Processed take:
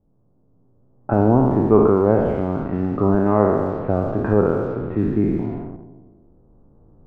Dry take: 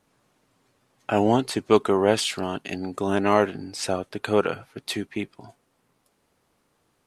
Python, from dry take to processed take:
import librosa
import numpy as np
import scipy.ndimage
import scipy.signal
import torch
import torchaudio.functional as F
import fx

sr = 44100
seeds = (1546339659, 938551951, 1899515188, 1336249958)

p1 = fx.spec_trails(x, sr, decay_s=1.55)
p2 = fx.recorder_agc(p1, sr, target_db=-8.5, rise_db_per_s=6.1, max_gain_db=30)
p3 = scipy.signal.sosfilt(scipy.signal.butter(4, 1500.0, 'lowpass', fs=sr, output='sos'), p2)
p4 = fx.low_shelf(p3, sr, hz=66.0, db=4.0)
p5 = p4 + 10.0 ** (-13.5 / 20.0) * np.pad(p4, (int(76 * sr / 1000.0), 0))[:len(p4)]
p6 = np.where(np.abs(p5) >= 10.0 ** (-33.0 / 20.0), p5, 0.0)
p7 = p5 + (p6 * 10.0 ** (-3.5 / 20.0))
p8 = fx.tilt_eq(p7, sr, slope=-3.5)
p9 = fx.env_lowpass(p8, sr, base_hz=640.0, full_db=-8.0)
y = p9 * 10.0 ** (-7.0 / 20.0)